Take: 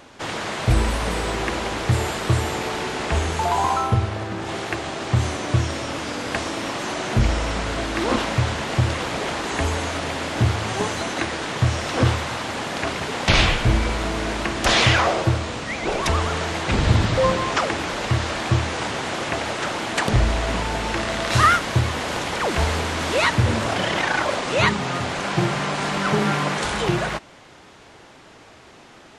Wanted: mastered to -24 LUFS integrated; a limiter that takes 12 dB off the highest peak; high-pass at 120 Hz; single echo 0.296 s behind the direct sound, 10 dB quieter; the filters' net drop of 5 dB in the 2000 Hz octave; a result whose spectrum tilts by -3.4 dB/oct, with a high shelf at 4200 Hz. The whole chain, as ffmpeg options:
-af "highpass=120,equalizer=f=2k:t=o:g=-8.5,highshelf=f=4.2k:g=8.5,alimiter=limit=-17.5dB:level=0:latency=1,aecho=1:1:296:0.316,volume=2dB"

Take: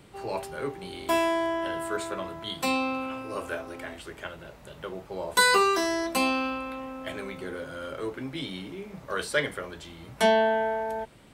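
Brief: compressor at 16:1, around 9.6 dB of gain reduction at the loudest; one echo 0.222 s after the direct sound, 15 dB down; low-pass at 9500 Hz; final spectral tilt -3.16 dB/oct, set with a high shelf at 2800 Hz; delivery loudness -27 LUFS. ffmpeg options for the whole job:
-af "lowpass=9.5k,highshelf=f=2.8k:g=4,acompressor=threshold=-25dB:ratio=16,aecho=1:1:222:0.178,volume=5.5dB"

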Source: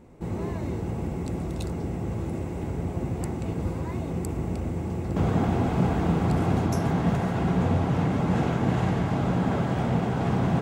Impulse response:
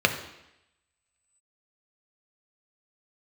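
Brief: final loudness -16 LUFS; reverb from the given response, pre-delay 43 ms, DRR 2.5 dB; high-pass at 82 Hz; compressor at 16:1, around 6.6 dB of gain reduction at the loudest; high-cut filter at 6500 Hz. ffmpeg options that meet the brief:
-filter_complex "[0:a]highpass=82,lowpass=6.5k,acompressor=threshold=-26dB:ratio=16,asplit=2[a][b];[1:a]atrim=start_sample=2205,adelay=43[c];[b][c]afir=irnorm=-1:irlink=0,volume=-18.5dB[d];[a][d]amix=inputs=2:normalize=0,volume=13.5dB"

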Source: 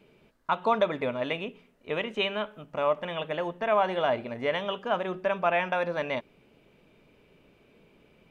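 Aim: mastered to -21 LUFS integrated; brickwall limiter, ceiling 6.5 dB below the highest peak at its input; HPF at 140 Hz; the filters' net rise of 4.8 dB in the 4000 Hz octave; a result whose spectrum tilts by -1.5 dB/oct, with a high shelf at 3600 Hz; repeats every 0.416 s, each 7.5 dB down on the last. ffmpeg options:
-af "highpass=140,highshelf=f=3.6k:g=6.5,equalizer=f=4k:t=o:g=3,alimiter=limit=-17dB:level=0:latency=1,aecho=1:1:416|832|1248|1664|2080:0.422|0.177|0.0744|0.0312|0.0131,volume=8.5dB"

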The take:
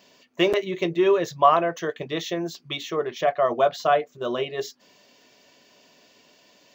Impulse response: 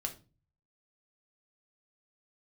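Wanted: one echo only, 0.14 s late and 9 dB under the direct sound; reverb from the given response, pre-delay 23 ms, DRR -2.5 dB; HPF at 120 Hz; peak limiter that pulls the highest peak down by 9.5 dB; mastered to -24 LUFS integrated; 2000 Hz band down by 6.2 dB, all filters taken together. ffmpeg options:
-filter_complex "[0:a]highpass=120,equalizer=f=2k:t=o:g=-8.5,alimiter=limit=-15.5dB:level=0:latency=1,aecho=1:1:140:0.355,asplit=2[a][b];[1:a]atrim=start_sample=2205,adelay=23[c];[b][c]afir=irnorm=-1:irlink=0,volume=2dB[d];[a][d]amix=inputs=2:normalize=0,volume=-1.5dB"

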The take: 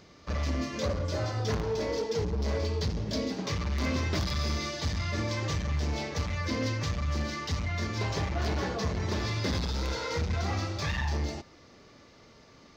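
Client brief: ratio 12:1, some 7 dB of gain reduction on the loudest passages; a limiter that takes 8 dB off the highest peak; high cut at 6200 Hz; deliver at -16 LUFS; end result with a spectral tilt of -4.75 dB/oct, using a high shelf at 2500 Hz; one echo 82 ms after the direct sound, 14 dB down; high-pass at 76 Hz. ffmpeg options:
-af "highpass=76,lowpass=6.2k,highshelf=f=2.5k:g=5.5,acompressor=threshold=-33dB:ratio=12,alimiter=level_in=7.5dB:limit=-24dB:level=0:latency=1,volume=-7.5dB,aecho=1:1:82:0.2,volume=24dB"

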